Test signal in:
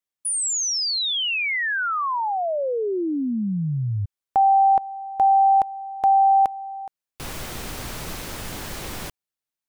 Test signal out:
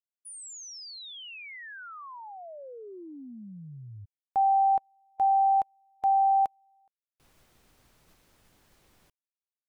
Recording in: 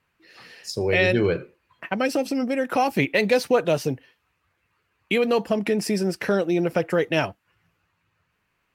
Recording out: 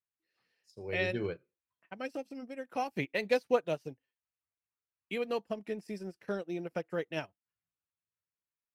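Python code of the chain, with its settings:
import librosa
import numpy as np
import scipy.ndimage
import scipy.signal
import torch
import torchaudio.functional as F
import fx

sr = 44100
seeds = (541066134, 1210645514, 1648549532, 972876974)

y = fx.upward_expand(x, sr, threshold_db=-32.0, expansion=2.5)
y = F.gain(torch.from_numpy(y), -6.5).numpy()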